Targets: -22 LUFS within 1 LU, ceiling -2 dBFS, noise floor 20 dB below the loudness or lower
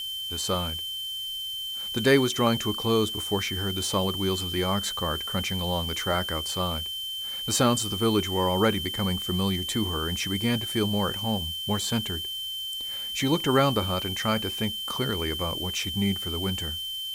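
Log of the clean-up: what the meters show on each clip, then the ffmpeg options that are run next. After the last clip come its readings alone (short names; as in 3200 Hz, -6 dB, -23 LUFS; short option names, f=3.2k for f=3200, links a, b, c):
steady tone 3100 Hz; tone level -31 dBFS; noise floor -34 dBFS; noise floor target -47 dBFS; loudness -26.5 LUFS; peak -6.0 dBFS; loudness target -22.0 LUFS
-> -af "bandreject=f=3.1k:w=30"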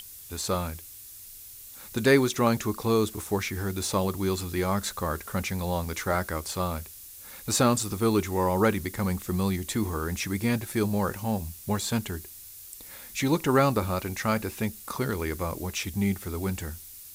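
steady tone none; noise floor -46 dBFS; noise floor target -48 dBFS
-> -af "afftdn=nr=6:nf=-46"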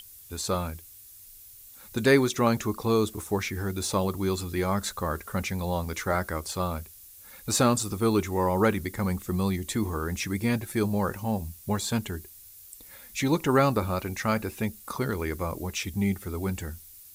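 noise floor -49 dBFS; loudness -28.0 LUFS; peak -6.5 dBFS; loudness target -22.0 LUFS
-> -af "volume=6dB,alimiter=limit=-2dB:level=0:latency=1"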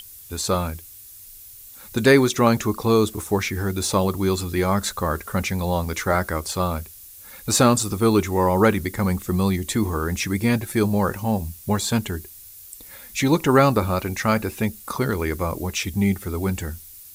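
loudness -22.0 LUFS; peak -2.0 dBFS; noise floor -43 dBFS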